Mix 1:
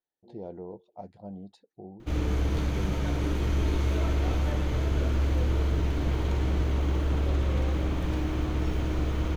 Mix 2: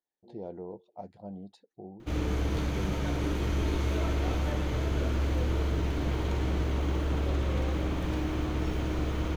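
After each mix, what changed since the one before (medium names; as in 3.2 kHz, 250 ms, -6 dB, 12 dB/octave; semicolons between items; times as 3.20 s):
master: add bass shelf 88 Hz -5.5 dB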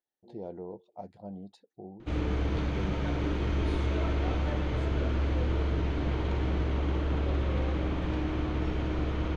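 background: add low-pass 3.9 kHz 12 dB/octave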